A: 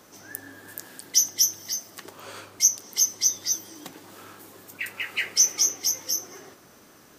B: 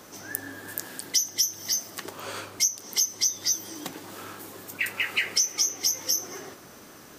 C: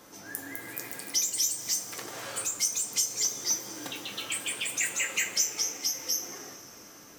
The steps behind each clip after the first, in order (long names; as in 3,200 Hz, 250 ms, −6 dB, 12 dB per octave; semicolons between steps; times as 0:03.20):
downward compressor 6 to 1, threshold −26 dBFS, peak gain reduction 12 dB; level +5 dB
delay with pitch and tempo change per echo 260 ms, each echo +3 semitones, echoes 2; coupled-rooms reverb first 0.3 s, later 4.2 s, from −18 dB, DRR 3.5 dB; level −6 dB